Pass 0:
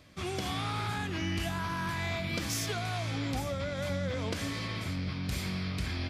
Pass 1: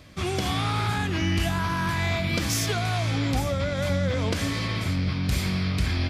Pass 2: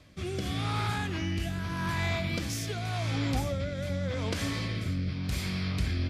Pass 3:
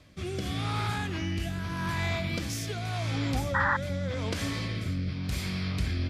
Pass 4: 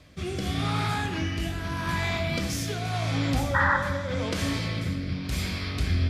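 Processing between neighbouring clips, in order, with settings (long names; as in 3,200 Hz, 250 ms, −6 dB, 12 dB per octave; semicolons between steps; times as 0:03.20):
low-shelf EQ 92 Hz +5.5 dB; level +7 dB
rotating-speaker cabinet horn 0.85 Hz; level −4 dB
sound drawn into the spectrogram noise, 0:03.54–0:03.77, 790–2,000 Hz −26 dBFS
dense smooth reverb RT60 1.2 s, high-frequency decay 0.6×, DRR 4.5 dB; level +2.5 dB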